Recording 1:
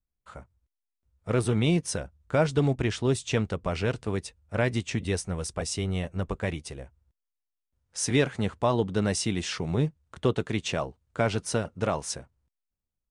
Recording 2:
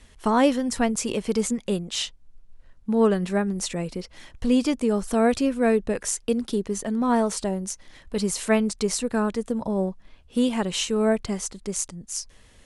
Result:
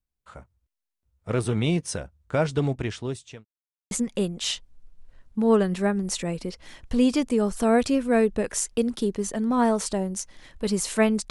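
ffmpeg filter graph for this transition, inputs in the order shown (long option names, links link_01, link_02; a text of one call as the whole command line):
ffmpeg -i cue0.wav -i cue1.wav -filter_complex "[0:a]apad=whole_dur=11.3,atrim=end=11.3,asplit=2[link_01][link_02];[link_01]atrim=end=3.45,asetpts=PTS-STARTPTS,afade=type=out:start_time=2.38:duration=1.07:curve=qsin[link_03];[link_02]atrim=start=3.45:end=3.91,asetpts=PTS-STARTPTS,volume=0[link_04];[1:a]atrim=start=1.42:end=8.81,asetpts=PTS-STARTPTS,afade=type=in:duration=0.004:curve=hsin[link_05];[link_03][link_04][link_05]concat=n=3:v=0:a=1" out.wav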